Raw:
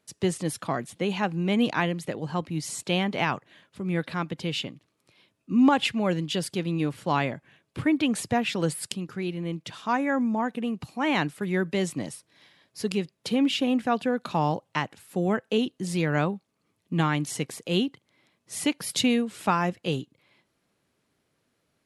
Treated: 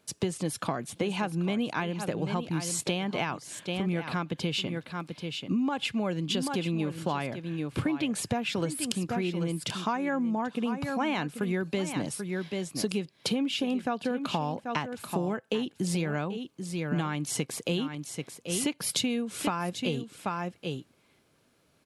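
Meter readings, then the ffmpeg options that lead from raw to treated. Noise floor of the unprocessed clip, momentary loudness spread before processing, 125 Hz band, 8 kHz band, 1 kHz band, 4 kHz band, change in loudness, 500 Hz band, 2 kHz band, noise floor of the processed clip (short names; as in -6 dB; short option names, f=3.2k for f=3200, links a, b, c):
-75 dBFS, 9 LU, -2.5 dB, +1.5 dB, -4.5 dB, -1.5 dB, -4.0 dB, -3.5 dB, -4.5 dB, -67 dBFS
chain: -filter_complex "[0:a]bandreject=f=1.9k:w=12,asplit=2[a][b];[b]aecho=0:1:786:0.251[c];[a][c]amix=inputs=2:normalize=0,acompressor=threshold=-32dB:ratio=10,volume=6dB"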